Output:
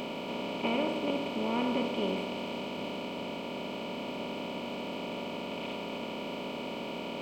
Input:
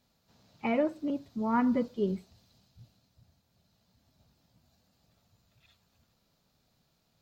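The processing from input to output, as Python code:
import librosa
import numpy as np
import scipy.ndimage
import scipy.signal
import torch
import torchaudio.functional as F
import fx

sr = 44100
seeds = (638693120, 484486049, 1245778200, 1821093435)

y = fx.bin_compress(x, sr, power=0.2)
y = fx.high_shelf_res(y, sr, hz=2300.0, db=9.0, q=3.0)
y = y * 10.0 ** (-8.0 / 20.0)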